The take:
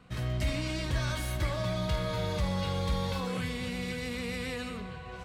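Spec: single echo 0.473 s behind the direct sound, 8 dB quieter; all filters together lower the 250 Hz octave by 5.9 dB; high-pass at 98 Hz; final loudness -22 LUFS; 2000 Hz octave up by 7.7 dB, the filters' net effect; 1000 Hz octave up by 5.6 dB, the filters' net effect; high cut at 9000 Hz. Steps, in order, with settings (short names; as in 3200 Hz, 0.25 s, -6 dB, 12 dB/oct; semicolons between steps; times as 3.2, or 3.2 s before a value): HPF 98 Hz; LPF 9000 Hz; bell 250 Hz -9 dB; bell 1000 Hz +5 dB; bell 2000 Hz +8 dB; echo 0.473 s -8 dB; gain +9 dB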